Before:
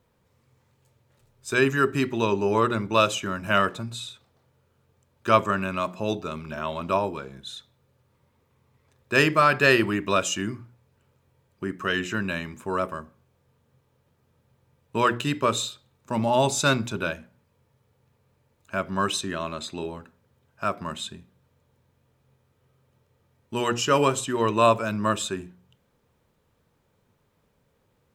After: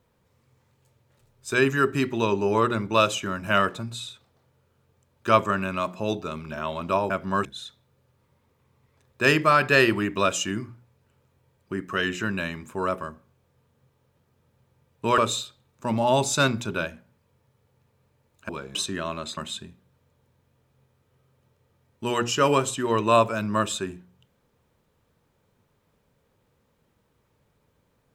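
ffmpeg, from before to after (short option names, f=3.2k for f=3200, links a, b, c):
-filter_complex "[0:a]asplit=7[a][b][c][d][e][f][g];[a]atrim=end=7.102[h];[b]atrim=start=18.748:end=19.102[i];[c]atrim=start=7.358:end=15.092[j];[d]atrim=start=15.438:end=18.752[k];[e]atrim=start=7.098:end=7.362[l];[f]atrim=start=19.098:end=19.722[m];[g]atrim=start=20.868[n];[h][i]acrossfade=d=0.004:c1=hsin:c2=hsin[o];[o][j]acrossfade=d=0.004:c1=hsin:c2=hsin[p];[p][k]acrossfade=d=0.004:c1=hsin:c2=hsin[q];[q][l]acrossfade=d=0.004:c1=hsin:c2=hsin[r];[r][m]acrossfade=d=0.004:c1=hsin:c2=hsin[s];[s][n]acrossfade=d=0.004:c1=hsin:c2=hsin"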